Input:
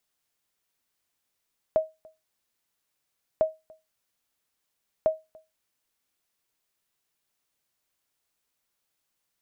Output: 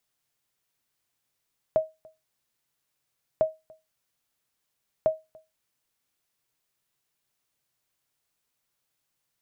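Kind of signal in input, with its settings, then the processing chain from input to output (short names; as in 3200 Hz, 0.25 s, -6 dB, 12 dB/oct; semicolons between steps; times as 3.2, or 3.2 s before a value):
sonar ping 633 Hz, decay 0.22 s, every 1.65 s, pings 3, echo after 0.29 s, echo -27.5 dB -14 dBFS
bell 130 Hz +8.5 dB 0.37 oct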